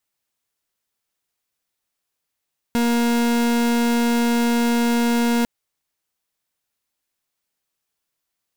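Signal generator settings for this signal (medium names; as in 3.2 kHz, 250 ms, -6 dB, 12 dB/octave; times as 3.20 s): pulse 236 Hz, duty 39% -18.5 dBFS 2.70 s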